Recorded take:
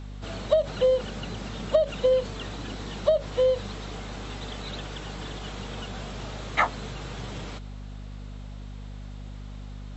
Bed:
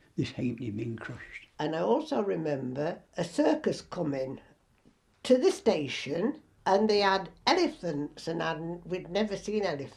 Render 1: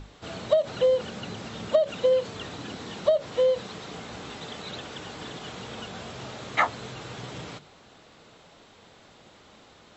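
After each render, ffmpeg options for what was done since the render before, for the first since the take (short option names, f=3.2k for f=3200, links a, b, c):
-af "bandreject=f=50:t=h:w=6,bandreject=f=100:t=h:w=6,bandreject=f=150:t=h:w=6,bandreject=f=200:t=h:w=6,bandreject=f=250:t=h:w=6"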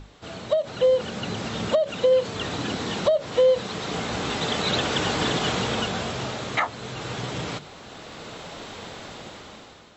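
-af "dynaudnorm=f=460:g=5:m=16dB,alimiter=limit=-11.5dB:level=0:latency=1:release=499"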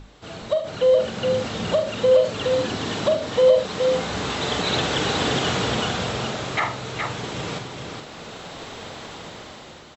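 -filter_complex "[0:a]asplit=2[a][b];[b]adelay=45,volume=-9dB[c];[a][c]amix=inputs=2:normalize=0,asplit=2[d][e];[e]aecho=0:1:76|418:0.266|0.562[f];[d][f]amix=inputs=2:normalize=0"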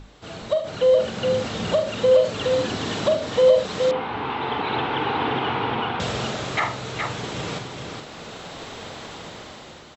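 -filter_complex "[0:a]asettb=1/sr,asplit=3[a][b][c];[a]atrim=end=3.914[d];[b]atrim=start=3.91:end=6,asetpts=PTS-STARTPTS,afade=t=in:d=0.004:c=qsin,afade=t=out:st=2.086:d=0.004:c=qsin,highpass=120,equalizer=f=180:t=q:w=4:g=-10,equalizer=f=590:t=q:w=4:g=-9,equalizer=f=890:t=q:w=4:g=9,equalizer=f=1.8k:t=q:w=4:g=-4,lowpass=f=2.8k:w=0.5412,lowpass=f=2.8k:w=1.3066[e];[c]atrim=start=5.996[f];[d][e]acrossfade=d=0.004:c1=hsin:c2=qsin[g];[g][f]acrossfade=d=0.004:c1=qsin:c2=hsin"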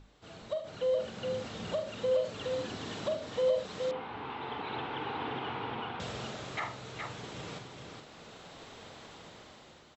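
-af "volume=-13dB"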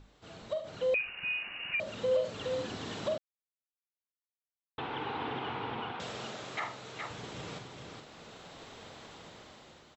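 -filter_complex "[0:a]asettb=1/sr,asplit=3[a][b][c];[a]atrim=end=0.944[d];[b]atrim=start=0.94:end=1.8,asetpts=PTS-STARTPTS,afade=t=in:d=0.004:c=qsin,afade=t=out:st=0.856:d=0.004:c=qsin,lowpass=f=2.6k:t=q:w=0.5098,lowpass=f=2.6k:t=q:w=0.6013,lowpass=f=2.6k:t=q:w=0.9,lowpass=f=2.6k:t=q:w=2.563,afreqshift=-3000[e];[c]atrim=start=1.796[f];[d][e]acrossfade=d=0.004:c1=hsin:c2=qsin[g];[g][f]acrossfade=d=0.004:c1=qsin:c2=hsin,asettb=1/sr,asplit=3[h][i][j];[h]atrim=end=5.924[k];[i]atrim=start=5.92:end=7.11,asetpts=PTS-STARTPTS,afade=t=in:d=0.004:c=qsin,afade=t=out:st=1.186:d=0.004:c=qsin,highpass=f=220:p=1[l];[j]atrim=start=7.106[m];[k][l]acrossfade=d=0.004:c1=hsin:c2=qsin[n];[n][m]acrossfade=d=0.004:c1=qsin:c2=hsin,asplit=3[o][p][q];[o]atrim=end=3.18,asetpts=PTS-STARTPTS,afade=t=out:st=3.176:d=0.004:c=hsin[r];[p]atrim=start=3.18:end=4.78,asetpts=PTS-STARTPTS,volume=0[s];[q]atrim=start=4.78,asetpts=PTS-STARTPTS,afade=t=in:d=0.004:c=hsin[t];[r][s][t]concat=n=3:v=0:a=1"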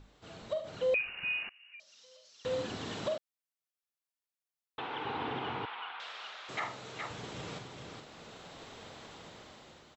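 -filter_complex "[0:a]asettb=1/sr,asplit=3[a][b][c];[a]atrim=end=1.494[d];[b]atrim=start=1.49:end=2.45,asetpts=PTS-STARTPTS,afade=t=in:d=0.004:c=qsin,afade=t=out:st=0.956:d=0.004:c=qsin,bandpass=f=5.5k:t=q:w=4.4[e];[c]atrim=start=2.446[f];[d][e]acrossfade=d=0.004:c1=hsin:c2=qsin[g];[g][f]acrossfade=d=0.004:c1=qsin:c2=hsin,asettb=1/sr,asplit=3[h][i][j];[h]atrim=end=3.084[k];[i]atrim=start=3.08:end=5.05,asetpts=PTS-STARTPTS,afade=t=in:d=0.004:c=qsin,afade=t=out:st=1.966:d=0.004:c=qsin,lowshelf=f=230:g=-11.5[l];[j]atrim=start=5.046[m];[k][l]acrossfade=d=0.004:c1=hsin:c2=qsin[n];[n][m]acrossfade=d=0.004:c1=qsin:c2=hsin,asettb=1/sr,asplit=3[o][p][q];[o]atrim=end=5.654[r];[p]atrim=start=5.65:end=6.49,asetpts=PTS-STARTPTS,afade=t=in:d=0.004:c=qsin,afade=t=out:st=0.836:d=0.004:c=qsin,asuperpass=centerf=2100:order=4:qfactor=0.62[s];[q]atrim=start=6.486[t];[r][s]acrossfade=d=0.004:c1=hsin:c2=qsin[u];[u][t]acrossfade=d=0.004:c1=qsin:c2=hsin"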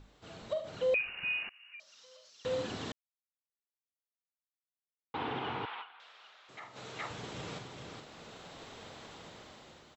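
-filter_complex "[0:a]asettb=1/sr,asplit=3[a][b][c];[a]atrim=end=1.534[d];[b]atrim=start=1.53:end=2.3,asetpts=PTS-STARTPTS,afade=t=in:d=0.004:c=qsin,afade=t=out:st=0.766:d=0.004:c=qsin,equalizer=f=1.2k:t=o:w=1.2:g=6.5[e];[c]atrim=start=2.296[f];[d][e]acrossfade=d=0.004:c1=hsin:c2=qsin[g];[g][f]acrossfade=d=0.004:c1=qsin:c2=hsin,asplit=5[h][i][j][k][l];[h]atrim=end=2.92,asetpts=PTS-STARTPTS,afade=t=out:st=2.916:d=0.004:c=hsin[m];[i]atrim=start=2.92:end=5.14,asetpts=PTS-STARTPTS,volume=0[n];[j]atrim=start=5.14:end=5.98,asetpts=PTS-STARTPTS,afade=t=in:d=0.004:c=hsin,afade=t=out:st=0.67:d=0.17:c=exp:silence=0.251189[o];[k]atrim=start=5.98:end=6.6,asetpts=PTS-STARTPTS,volume=-12dB[p];[l]atrim=start=6.6,asetpts=PTS-STARTPTS,afade=t=in:d=0.17:c=exp:silence=0.251189[q];[m][n][o][p][q]concat=n=5:v=0:a=1"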